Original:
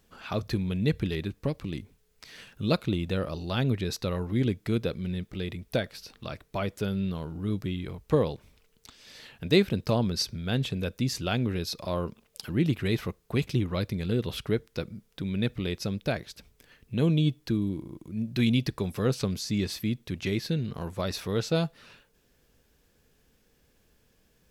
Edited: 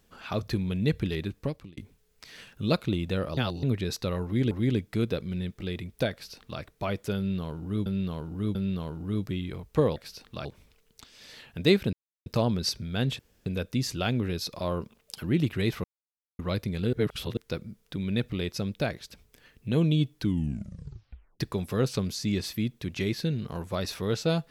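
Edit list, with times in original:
1.41–1.77 fade out
3.37–3.63 reverse
4.24–4.51 loop, 2 plays
5.85–6.34 copy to 8.31
6.9–7.59 loop, 3 plays
9.79 insert silence 0.33 s
10.72 insert room tone 0.27 s
13.1–13.65 mute
14.19–14.63 reverse
17.43 tape stop 1.23 s

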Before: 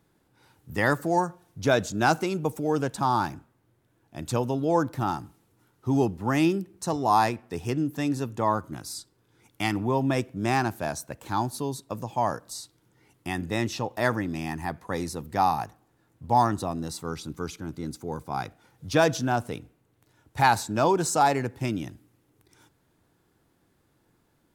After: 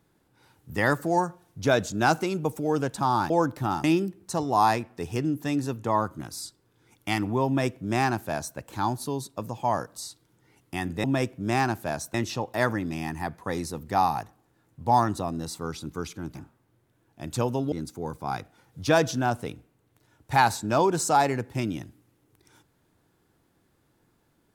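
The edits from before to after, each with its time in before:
3.3–4.67 move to 17.78
5.21–6.37 cut
10–11.1 copy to 13.57

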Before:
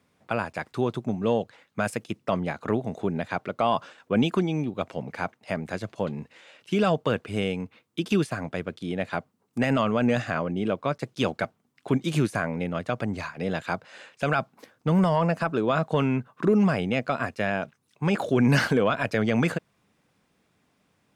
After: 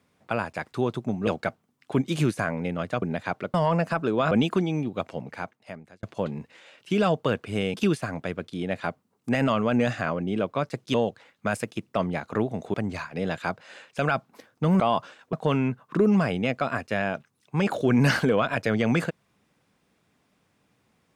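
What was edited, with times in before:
1.27–3.07 swap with 11.23–12.98
3.59–4.12 swap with 15.04–15.81
4.86–5.84 fade out
7.55–8.03 cut

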